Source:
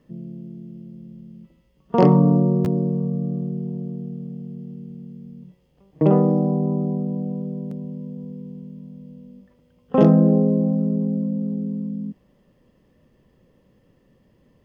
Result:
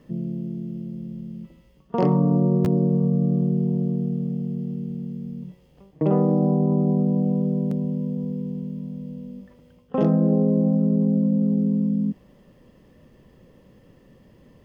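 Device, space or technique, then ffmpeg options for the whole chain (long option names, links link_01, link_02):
compression on the reversed sound: -af "areverse,acompressor=threshold=-23dB:ratio=6,areverse,volume=6.5dB"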